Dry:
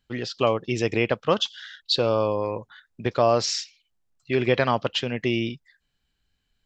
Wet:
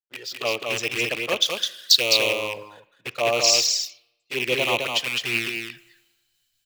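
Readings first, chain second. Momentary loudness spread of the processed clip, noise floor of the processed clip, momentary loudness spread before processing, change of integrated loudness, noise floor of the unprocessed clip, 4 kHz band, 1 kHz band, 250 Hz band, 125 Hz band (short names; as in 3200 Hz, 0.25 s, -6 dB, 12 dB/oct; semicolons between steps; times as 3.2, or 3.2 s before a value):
16 LU, -73 dBFS, 11 LU, +3.0 dB, -75 dBFS, +8.0 dB, -4.0 dB, -8.0 dB, -11.0 dB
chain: rattling part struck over -30 dBFS, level -13 dBFS; sample leveller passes 1; reverse; upward compressor, threshold -24 dBFS; reverse; bell 210 Hz -4 dB 0.31 oct; envelope flanger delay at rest 9 ms, full sweep at -14 dBFS; RIAA curve recording; on a send: echo 0.21 s -3 dB; on the sum: spring tank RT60 1.6 s, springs 32/51 ms, chirp 55 ms, DRR 16.5 dB; three-band expander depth 70%; gain -4.5 dB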